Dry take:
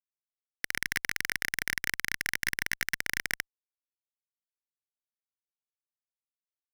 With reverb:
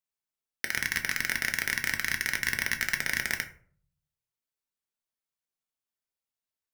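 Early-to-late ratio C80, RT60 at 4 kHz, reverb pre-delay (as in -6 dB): 17.0 dB, 0.25 s, 5 ms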